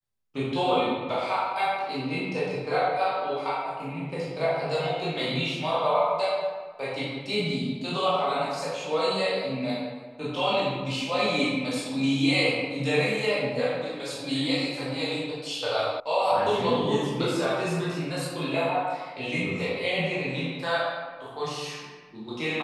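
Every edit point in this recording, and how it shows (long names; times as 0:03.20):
0:16.00: cut off before it has died away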